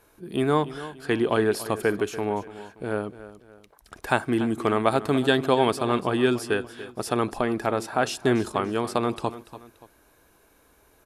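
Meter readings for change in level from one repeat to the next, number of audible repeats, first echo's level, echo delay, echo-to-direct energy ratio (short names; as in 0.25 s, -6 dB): -8.0 dB, 2, -15.0 dB, 0.288 s, -14.5 dB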